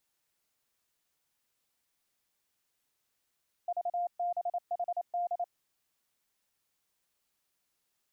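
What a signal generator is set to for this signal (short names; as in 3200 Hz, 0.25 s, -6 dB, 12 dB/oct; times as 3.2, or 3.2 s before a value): Morse "VBHD" 28 wpm 702 Hz -29 dBFS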